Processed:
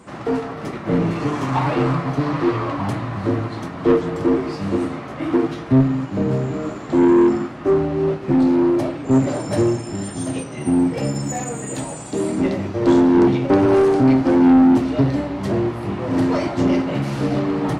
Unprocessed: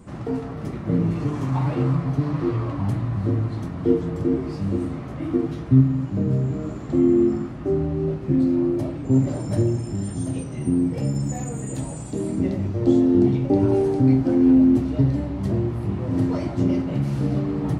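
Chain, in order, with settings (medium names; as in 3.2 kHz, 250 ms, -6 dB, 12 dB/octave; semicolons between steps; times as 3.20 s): overdrive pedal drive 23 dB, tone 5.1 kHz, clips at -4.5 dBFS; upward expansion 1.5:1, over -25 dBFS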